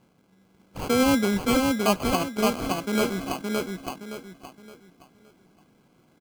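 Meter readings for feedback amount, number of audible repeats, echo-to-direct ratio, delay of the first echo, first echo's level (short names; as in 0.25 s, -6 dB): 32%, 4, -2.5 dB, 0.568 s, -3.0 dB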